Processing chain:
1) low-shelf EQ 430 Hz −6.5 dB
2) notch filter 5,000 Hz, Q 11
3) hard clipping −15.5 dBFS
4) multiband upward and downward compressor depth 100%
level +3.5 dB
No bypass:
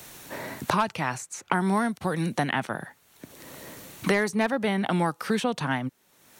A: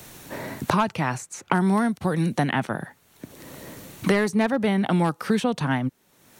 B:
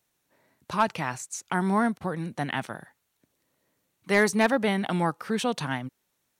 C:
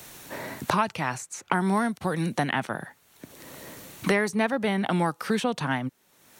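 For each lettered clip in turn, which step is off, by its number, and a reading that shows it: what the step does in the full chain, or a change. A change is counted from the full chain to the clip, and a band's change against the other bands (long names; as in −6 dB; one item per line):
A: 1, 125 Hz band +4.5 dB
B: 4, change in crest factor −6.0 dB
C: 3, distortion level −23 dB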